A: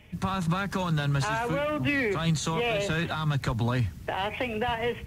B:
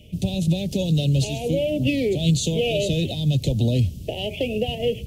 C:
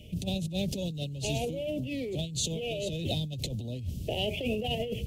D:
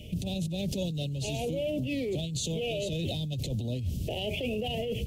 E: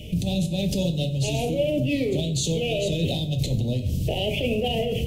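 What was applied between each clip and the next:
Chebyshev band-stop 590–2900 Hz, order 3; trim +7.5 dB
compressor with a negative ratio -27 dBFS, ratio -1; trim -6 dB
peak limiter -28.5 dBFS, peak gain reduction 10 dB; trim +4.5 dB
simulated room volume 150 m³, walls mixed, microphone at 0.45 m; trim +6 dB

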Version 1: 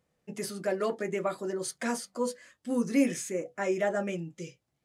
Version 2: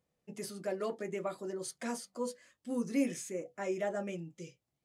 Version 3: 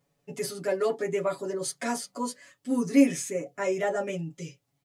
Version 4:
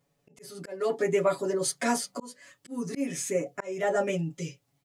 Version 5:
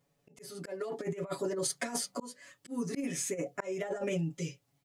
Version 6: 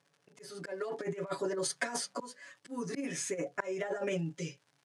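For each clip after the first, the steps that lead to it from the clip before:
peaking EQ 1.6 kHz -3.5 dB 0.77 oct; trim -6 dB
comb 7.1 ms, depth 97%; trim +6 dB
level rider gain up to 3.5 dB; slow attack 364 ms
compressor with a negative ratio -29 dBFS, ratio -0.5; trim -4 dB
crackle 140 per s -53 dBFS; cabinet simulation 150–9700 Hz, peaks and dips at 230 Hz -5 dB, 1 kHz +3 dB, 1.6 kHz +6 dB, 7.5 kHz -4 dB

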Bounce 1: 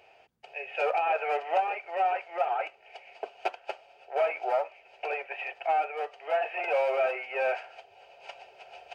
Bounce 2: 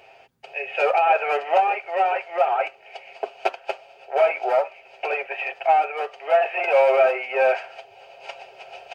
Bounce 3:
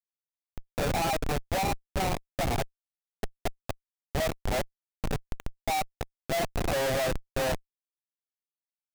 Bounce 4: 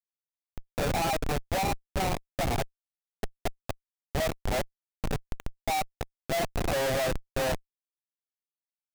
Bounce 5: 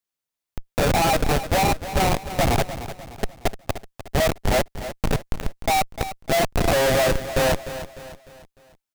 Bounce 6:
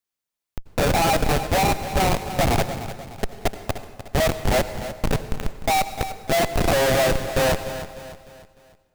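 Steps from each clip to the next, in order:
comb 7.5 ms, depth 38%; trim +7.5 dB
Schmitt trigger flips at -18 dBFS; trim -4 dB
no audible change
feedback delay 301 ms, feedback 43%, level -12.5 dB; trim +8.5 dB
plate-style reverb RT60 1.4 s, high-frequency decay 0.75×, pre-delay 75 ms, DRR 12 dB

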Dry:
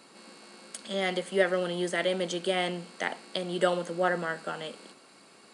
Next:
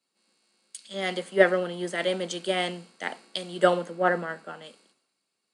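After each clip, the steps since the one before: three bands expanded up and down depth 100%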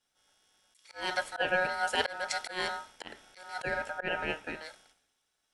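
slow attack 282 ms; ring modulator 1.1 kHz; trim +3.5 dB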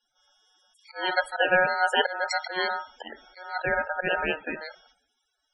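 loudest bins only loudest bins 32; trim +7.5 dB

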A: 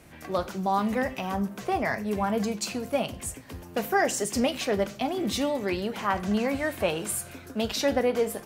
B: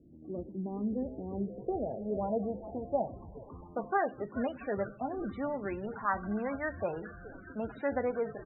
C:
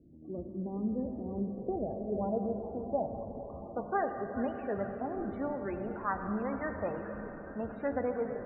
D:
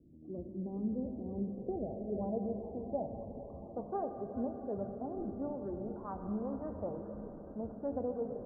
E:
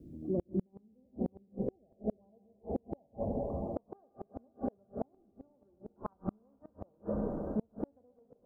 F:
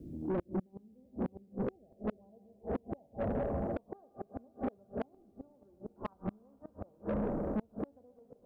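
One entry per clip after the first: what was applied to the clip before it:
frequency-shifting echo 417 ms, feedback 65%, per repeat -130 Hz, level -16 dB; low-pass sweep 310 Hz -> 1.5 kHz, 0.59–4.50 s; loudest bins only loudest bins 32; trim -8.5 dB
distance through air 480 m; on a send at -6 dB: reverberation RT60 4.7 s, pre-delay 58 ms
Bessel low-pass 640 Hz, order 8; trim -2 dB
inverted gate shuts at -32 dBFS, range -39 dB; trim +10.5 dB
saturation -33 dBFS, distortion -9 dB; trim +4.5 dB

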